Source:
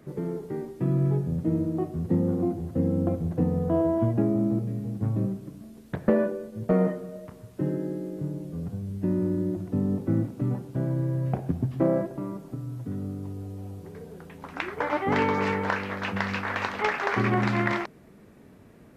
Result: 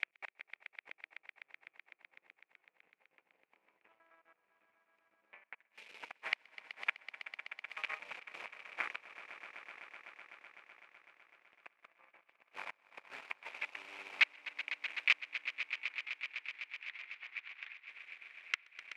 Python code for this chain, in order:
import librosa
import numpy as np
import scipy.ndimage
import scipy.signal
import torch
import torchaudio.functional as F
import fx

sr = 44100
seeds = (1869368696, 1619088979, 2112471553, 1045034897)

y = fx.block_reorder(x, sr, ms=111.0, group=8)
y = fx.gate_flip(y, sr, shuts_db=-25.0, range_db=-29)
y = fx.cheby_harmonics(y, sr, harmonics=(8,), levels_db=(-7,), full_scale_db=-22.5)
y = fx.ladder_bandpass(y, sr, hz=2600.0, resonance_pct=70)
y = fx.high_shelf(y, sr, hz=3300.0, db=-9.0)
y = fx.echo_swell(y, sr, ms=126, loudest=5, wet_db=-12.5)
y = fx.transient(y, sr, attack_db=6, sustain_db=-8)
y = y * librosa.db_to_amplitude(16.0)